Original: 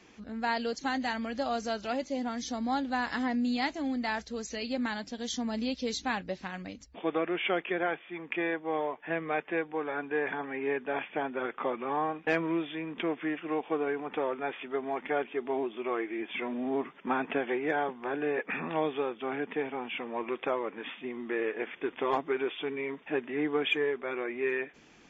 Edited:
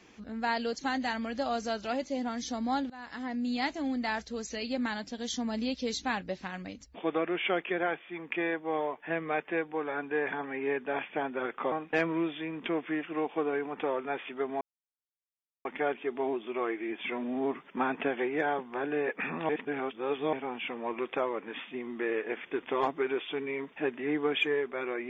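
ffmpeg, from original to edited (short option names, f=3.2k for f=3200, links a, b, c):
-filter_complex "[0:a]asplit=6[a][b][c][d][e][f];[a]atrim=end=2.9,asetpts=PTS-STARTPTS,afade=t=out:st=2.896:d=0.004:c=hsin:silence=0.0891251[g];[b]atrim=start=2.9:end=11.722,asetpts=PTS-STARTPTS,afade=t=in:d=0.79:silence=0.0891251[h];[c]atrim=start=12.058:end=14.95,asetpts=PTS-STARTPTS,afade=t=out:st=2.888:d=0.004:c=hsin,apad=pad_dur=1.04[i];[d]atrim=start=14.95:end=18.792,asetpts=PTS-STARTPTS,afade=t=in:d=0.004:c=hsin[j];[e]atrim=start=18.788:end=19.632,asetpts=PTS-STARTPTS,areverse[k];[f]atrim=start=19.628[l];[g][h]concat=n=2:v=0:a=1[m];[i][j]concat=n=2:v=0:a=1[n];[m][n]acrossfade=d=0.004:c1=hsin:c2=hsin[o];[o][k]acrossfade=d=0.004:c1=hsin:c2=hsin[p];[p][l]acrossfade=d=0.004:c1=hsin:c2=hsin"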